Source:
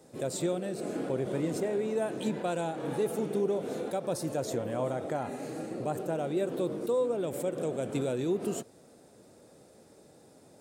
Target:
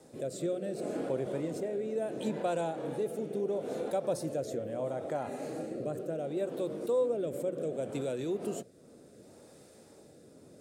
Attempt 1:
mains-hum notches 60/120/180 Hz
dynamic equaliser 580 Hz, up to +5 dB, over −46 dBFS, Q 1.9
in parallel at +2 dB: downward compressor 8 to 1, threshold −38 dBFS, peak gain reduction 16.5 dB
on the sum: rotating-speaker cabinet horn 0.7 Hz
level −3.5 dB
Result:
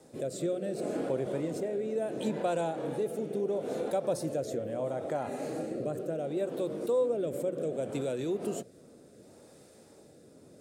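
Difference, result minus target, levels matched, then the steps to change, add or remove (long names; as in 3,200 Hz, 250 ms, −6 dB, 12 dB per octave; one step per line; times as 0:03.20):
downward compressor: peak gain reduction −9.5 dB
change: downward compressor 8 to 1, threshold −49 dBFS, peak gain reduction 26 dB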